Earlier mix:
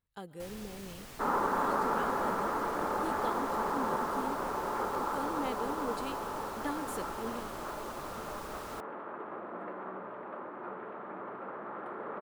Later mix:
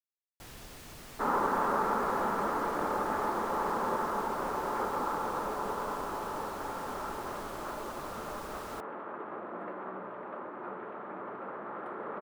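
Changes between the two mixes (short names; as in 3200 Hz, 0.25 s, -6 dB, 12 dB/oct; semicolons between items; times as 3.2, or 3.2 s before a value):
speech: muted; second sound: send +8.5 dB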